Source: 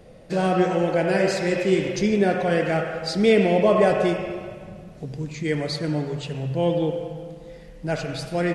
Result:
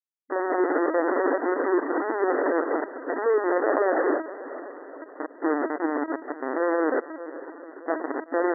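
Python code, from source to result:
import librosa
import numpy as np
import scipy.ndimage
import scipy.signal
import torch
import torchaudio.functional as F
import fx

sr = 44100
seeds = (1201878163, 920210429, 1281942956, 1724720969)

p1 = fx.rider(x, sr, range_db=5, speed_s=2.0)
p2 = x + (p1 * 10.0 ** (1.0 / 20.0))
p3 = fx.rotary(p2, sr, hz=5.0)
p4 = fx.add_hum(p3, sr, base_hz=60, snr_db=28)
p5 = fx.schmitt(p4, sr, flips_db=-17.5)
p6 = p5 + fx.echo_diffused(p5, sr, ms=460, feedback_pct=58, wet_db=-15.0, dry=0)
p7 = fx.lpc_vocoder(p6, sr, seeds[0], excitation='pitch_kept', order=16)
p8 = fx.brickwall_bandpass(p7, sr, low_hz=260.0, high_hz=2000.0)
y = p8 * 10.0 ** (-1.5 / 20.0)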